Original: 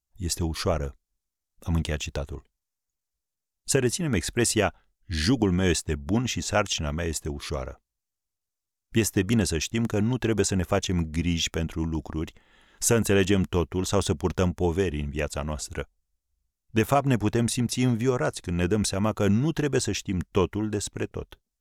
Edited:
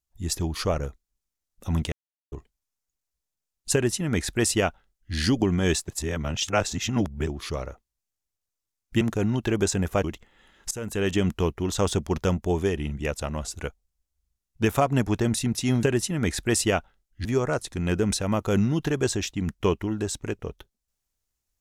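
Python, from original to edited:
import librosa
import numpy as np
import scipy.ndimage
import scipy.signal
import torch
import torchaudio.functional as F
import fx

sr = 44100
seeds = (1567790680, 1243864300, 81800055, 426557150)

y = fx.edit(x, sr, fx.silence(start_s=1.92, length_s=0.4),
    fx.duplicate(start_s=3.73, length_s=1.42, to_s=17.97),
    fx.reverse_span(start_s=5.88, length_s=1.39),
    fx.cut(start_s=9.01, length_s=0.77),
    fx.cut(start_s=10.81, length_s=1.37),
    fx.fade_in_from(start_s=12.85, length_s=0.56, floor_db=-20.0), tone=tone)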